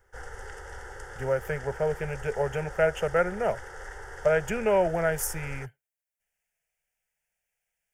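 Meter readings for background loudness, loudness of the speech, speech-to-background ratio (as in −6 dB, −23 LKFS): −42.5 LKFS, −28.0 LKFS, 14.5 dB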